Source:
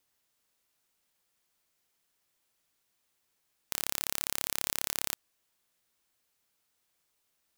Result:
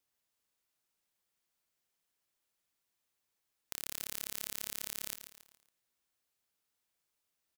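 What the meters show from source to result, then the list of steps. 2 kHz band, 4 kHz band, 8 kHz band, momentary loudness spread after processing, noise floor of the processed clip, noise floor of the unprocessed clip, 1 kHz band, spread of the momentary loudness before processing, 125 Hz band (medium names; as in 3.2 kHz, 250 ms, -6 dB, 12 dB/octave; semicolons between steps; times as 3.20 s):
-8.0 dB, -7.0 dB, -7.0 dB, 7 LU, -84 dBFS, -78 dBFS, -12.0 dB, 5 LU, -8.5 dB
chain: feedback delay 139 ms, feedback 40%, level -10 dB; dynamic bell 870 Hz, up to -7 dB, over -59 dBFS, Q 1.4; trim -7.5 dB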